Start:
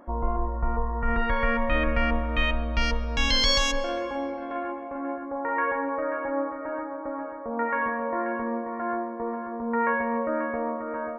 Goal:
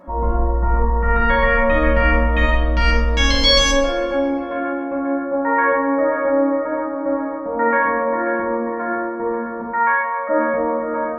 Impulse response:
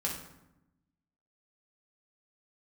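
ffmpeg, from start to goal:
-filter_complex "[0:a]asplit=3[a][b][c];[a]afade=t=out:st=9.61:d=0.02[d];[b]highpass=f=740:w=0.5412,highpass=f=740:w=1.3066,afade=t=in:st=9.61:d=0.02,afade=t=out:st=10.28:d=0.02[e];[c]afade=t=in:st=10.28:d=0.02[f];[d][e][f]amix=inputs=3:normalize=0[g];[1:a]atrim=start_sample=2205,asetrate=48510,aresample=44100[h];[g][h]afir=irnorm=-1:irlink=0,volume=4dB"

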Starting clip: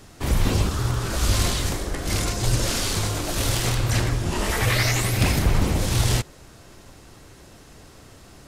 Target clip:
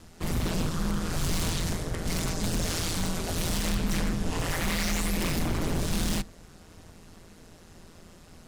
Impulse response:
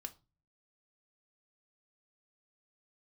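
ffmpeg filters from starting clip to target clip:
-filter_complex "[0:a]aeval=exprs='0.119*(abs(mod(val(0)/0.119+3,4)-2)-1)':c=same,aeval=exprs='val(0)*sin(2*PI*84*n/s)':c=same,asplit=2[a][b];[1:a]atrim=start_sample=2205,lowshelf=f=440:g=11[c];[b][c]afir=irnorm=-1:irlink=0,volume=-10.5dB[d];[a][d]amix=inputs=2:normalize=0,volume=-4dB"

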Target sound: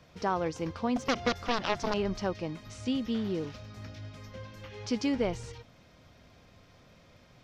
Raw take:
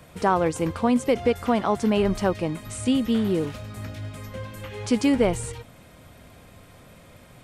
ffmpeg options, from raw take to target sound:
-filter_complex "[0:a]asettb=1/sr,asplit=3[a][b][c];[a]atrim=end=0.964[d];[b]atrim=start=0.96:end=1.94,asetpts=PTS-STARTPTS,afade=t=in:d=0.004:c=qsin,afade=t=out:st=0.976:d=0.004:c=qsin,aeval=exprs='0.376*(cos(1*acos(clip(val(0)/0.376,-1,1)))-cos(1*PI/2))+0.133*(cos(7*acos(clip(val(0)/0.376,-1,1)))-cos(7*PI/2))':c=same[e];[c]atrim=start=1.936[f];[d][e]acrossfade=d=0.004:c1=hsin:c2=qsin[g];[g][f]acrossfade=d=0.004:c1=qsin:c2=hsin,highshelf=f=7.1k:t=q:w=3:g=-9,volume=-9dB"

